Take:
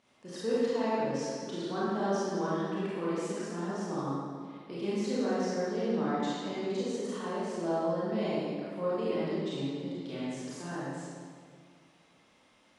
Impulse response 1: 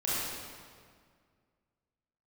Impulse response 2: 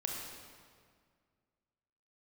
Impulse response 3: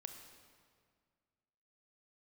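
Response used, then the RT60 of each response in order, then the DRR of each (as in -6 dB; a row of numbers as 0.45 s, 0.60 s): 1; 2.0 s, 2.0 s, 1.9 s; -9.5 dB, -0.5 dB, 5.5 dB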